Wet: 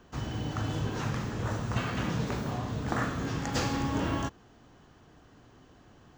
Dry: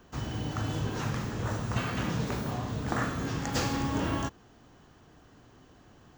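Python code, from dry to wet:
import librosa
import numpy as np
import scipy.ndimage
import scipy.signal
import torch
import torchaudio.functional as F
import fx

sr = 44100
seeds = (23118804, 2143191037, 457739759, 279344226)

y = fx.high_shelf(x, sr, hz=11000.0, db=-8.5)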